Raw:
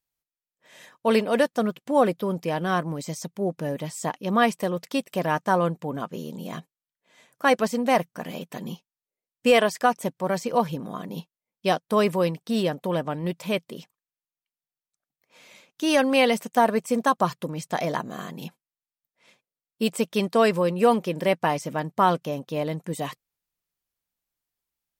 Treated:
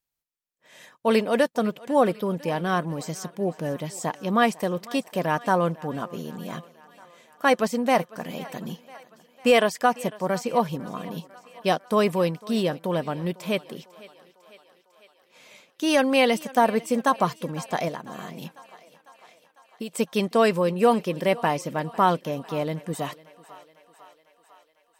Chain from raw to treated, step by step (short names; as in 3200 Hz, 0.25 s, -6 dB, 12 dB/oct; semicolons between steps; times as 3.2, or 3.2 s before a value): 17.88–19.95 compressor 5:1, threshold -32 dBFS, peak gain reduction 12.5 dB; thinning echo 0.5 s, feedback 67%, high-pass 360 Hz, level -19.5 dB